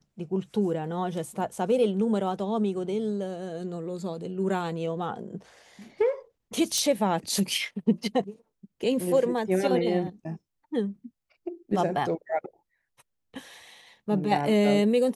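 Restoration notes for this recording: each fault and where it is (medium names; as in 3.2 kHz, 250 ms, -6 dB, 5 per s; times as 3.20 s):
6.78 s: pop -14 dBFS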